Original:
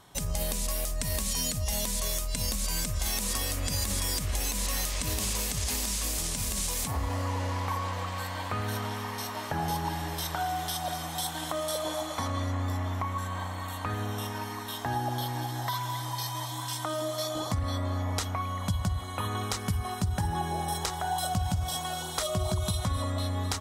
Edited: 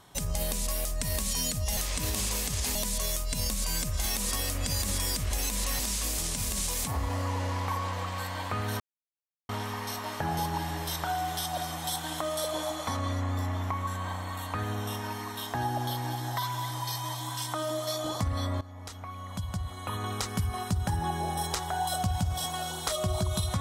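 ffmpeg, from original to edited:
ffmpeg -i in.wav -filter_complex "[0:a]asplit=6[link_01][link_02][link_03][link_04][link_05][link_06];[link_01]atrim=end=1.772[link_07];[link_02]atrim=start=4.808:end=5.792[link_08];[link_03]atrim=start=1.768:end=4.812[link_09];[link_04]atrim=start=5.788:end=8.8,asetpts=PTS-STARTPTS,afade=type=out:start_time=3.008:duration=0.004:curve=hsin,apad=pad_dur=0.69[link_10];[link_05]atrim=start=8.8:end=17.92,asetpts=PTS-STARTPTS,afade=type=in:duration=0.004:curve=hsin,afade=type=out:start_time=9.116:duration=0.004:curve=hsin:silence=0.133352[link_11];[link_06]atrim=start=17.92,asetpts=PTS-STARTPTS,afade=type=in:duration=1.77:silence=0.133352[link_12];[link_07][link_08]acrossfade=duration=0.004:curve1=hsin:curve2=hsin[link_13];[link_13][link_09]acrossfade=duration=0.004:curve1=hsin:curve2=hsin[link_14];[link_10][link_11][link_12]concat=n=3:v=0:a=1[link_15];[link_14][link_15]acrossfade=duration=0.004:curve1=hsin:curve2=hsin" out.wav

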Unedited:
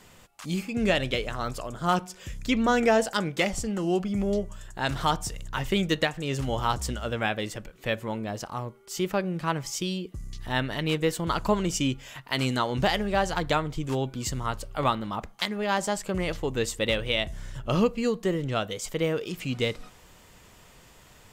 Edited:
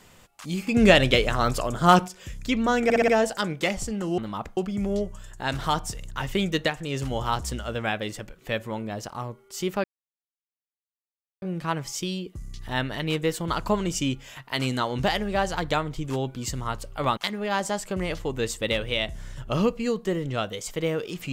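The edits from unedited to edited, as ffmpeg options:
ffmpeg -i in.wav -filter_complex "[0:a]asplit=11[link_01][link_02][link_03][link_04][link_05][link_06][link_07][link_08][link_09][link_10][link_11];[link_01]atrim=end=0.672[link_12];[link_02]atrim=start=0.668:end=2.082,asetpts=PTS-STARTPTS,volume=8dB[link_13];[link_03]atrim=start=2.078:end=2.902[link_14];[link_04]atrim=start=2.838:end=2.902[link_15];[link_05]atrim=start=2.838:end=2.902[link_16];[link_06]atrim=start=2.838:end=2.902[link_17];[link_07]atrim=start=2.838:end=3.942[link_18];[link_08]atrim=start=14.958:end=15.352[link_19];[link_09]atrim=start=3.938:end=9.21,asetpts=PTS-STARTPTS,afade=type=out:start_time=5.268:duration=0.004:curve=hsin,apad=pad_dur=1.58[link_20];[link_10]atrim=start=9.21:end=14.962,asetpts=PTS-STARTPTS,afade=type=in:duration=0.004:curve=hsin[link_21];[link_11]atrim=start=15.348[link_22];[link_12][link_13]acrossfade=duration=0.004:curve1=hsin:curve2=hsin[link_23];[link_23][link_14]acrossfade=duration=0.004:curve1=hsin:curve2=hsin[link_24];[link_24][link_15]acrossfade=duration=0.004:curve1=hsin:curve2=hsin[link_25];[link_25][link_16]acrossfade=duration=0.004:curve1=hsin:curve2=hsin[link_26];[link_26][link_17]acrossfade=duration=0.004:curve1=hsin:curve2=hsin[link_27];[link_27][link_18]acrossfade=duration=0.004:curve1=hsin:curve2=hsin[link_28];[link_28][link_19]acrossfade=duration=0.004:curve1=hsin:curve2=hsin[link_29];[link_20][link_21]concat=n=2:v=0:a=1[link_30];[link_29][link_30]acrossfade=duration=0.004:curve1=hsin:curve2=hsin[link_31];[link_31][link_22]acrossfade=duration=0.004:curve1=hsin:curve2=hsin" out.wav

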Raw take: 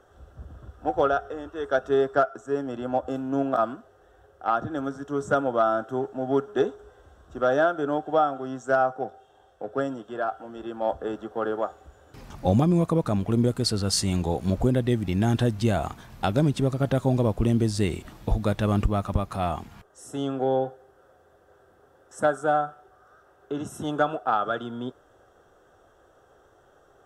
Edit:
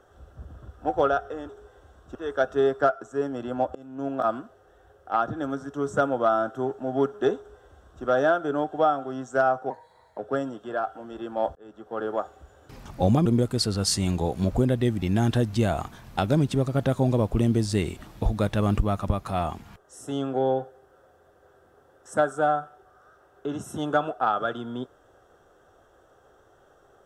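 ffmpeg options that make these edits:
ffmpeg -i in.wav -filter_complex "[0:a]asplit=8[link_01][link_02][link_03][link_04][link_05][link_06][link_07][link_08];[link_01]atrim=end=1.492[link_09];[link_02]atrim=start=6.708:end=7.372[link_10];[link_03]atrim=start=1.488:end=3.09,asetpts=PTS-STARTPTS,afade=type=out:start_time=1.598:duration=0.004:curve=hsin:silence=0.0707946[link_11];[link_04]atrim=start=3.09:end=9.044,asetpts=PTS-STARTPTS,afade=type=in:duration=0.59:silence=0.0707946[link_12];[link_05]atrim=start=9.04:end=9.63,asetpts=PTS-STARTPTS,asetrate=53802,aresample=44100,atrim=end_sample=21327,asetpts=PTS-STARTPTS[link_13];[link_06]atrim=start=9.626:end=11,asetpts=PTS-STARTPTS,afade=type=out:start_time=1.37:duration=0.004:curve=hsin[link_14];[link_07]atrim=start=11:end=12.702,asetpts=PTS-STARTPTS,afade=type=in:duration=0.62[link_15];[link_08]atrim=start=13.308[link_16];[link_09][link_10]acrossfade=duration=0.004:curve1=hsin:curve2=hsin[link_17];[link_11][link_12]concat=n=2:v=0:a=1[link_18];[link_17][link_18]acrossfade=duration=0.004:curve1=hsin:curve2=hsin[link_19];[link_19][link_13]acrossfade=duration=0.004:curve1=hsin:curve2=hsin[link_20];[link_14][link_15]concat=n=2:v=0:a=1[link_21];[link_20][link_21]acrossfade=duration=0.004:curve1=hsin:curve2=hsin[link_22];[link_22][link_16]acrossfade=duration=0.004:curve1=hsin:curve2=hsin" out.wav

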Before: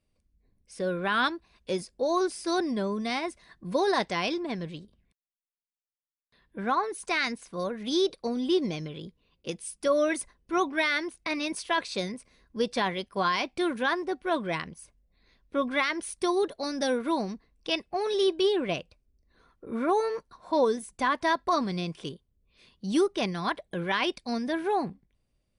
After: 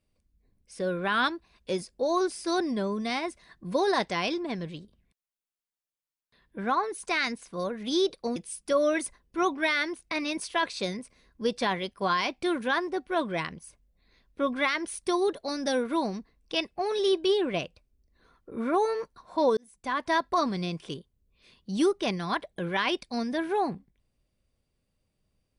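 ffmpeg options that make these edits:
ffmpeg -i in.wav -filter_complex "[0:a]asplit=3[link_01][link_02][link_03];[link_01]atrim=end=8.362[link_04];[link_02]atrim=start=9.508:end=20.72,asetpts=PTS-STARTPTS,afade=type=out:start_time=11.208:duration=0.004:curve=hsin[link_05];[link_03]atrim=start=20.72,asetpts=PTS-STARTPTS,afade=type=in:duration=0.56[link_06];[link_05][link_06]concat=n=2:v=0:a=1[link_07];[link_04][link_07]acrossfade=duration=0.004:curve1=hsin:curve2=hsin" out.wav

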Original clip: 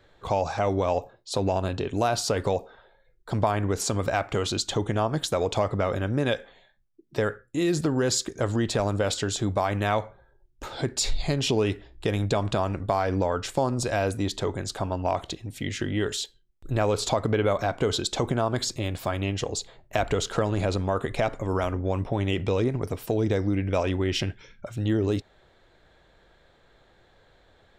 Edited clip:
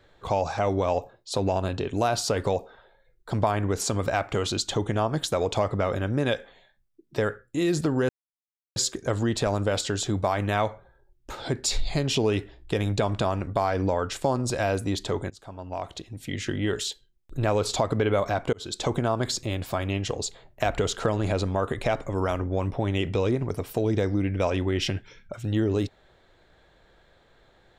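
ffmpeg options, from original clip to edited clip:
ffmpeg -i in.wav -filter_complex "[0:a]asplit=4[link_01][link_02][link_03][link_04];[link_01]atrim=end=8.09,asetpts=PTS-STARTPTS,afade=type=out:start_time=8.086:duration=0.004:curve=hsin,apad=pad_dur=0.67[link_05];[link_02]atrim=start=8.09:end=14.63,asetpts=PTS-STARTPTS,afade=type=in:duration=0.004:curve=hsin,afade=type=out:start_time=6.536:duration=0.004:curve=hsin:silence=0.0891251[link_06];[link_03]atrim=start=14.63:end=17.86,asetpts=PTS-STARTPTS,afade=type=in:duration=1.18:silence=0.0891251,afade=type=out:start_time=3.226:duration=0.004:curve=hsin[link_07];[link_04]atrim=start=17.86,asetpts=PTS-STARTPTS,afade=type=in:duration=0.33[link_08];[link_05][link_06][link_07][link_08]concat=n=4:v=0:a=1" out.wav

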